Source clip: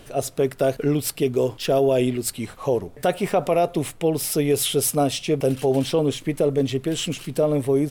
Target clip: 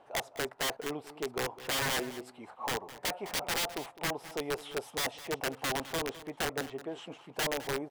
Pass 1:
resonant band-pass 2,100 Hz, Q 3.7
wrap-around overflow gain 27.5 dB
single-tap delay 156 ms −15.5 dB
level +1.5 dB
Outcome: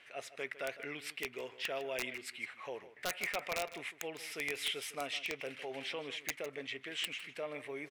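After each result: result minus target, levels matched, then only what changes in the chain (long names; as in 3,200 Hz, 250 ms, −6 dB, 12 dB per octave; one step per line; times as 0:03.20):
echo 52 ms early; 1,000 Hz band −3.5 dB
change: single-tap delay 208 ms −15.5 dB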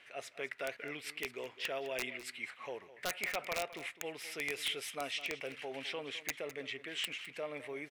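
1,000 Hz band −3.5 dB
change: resonant band-pass 850 Hz, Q 3.7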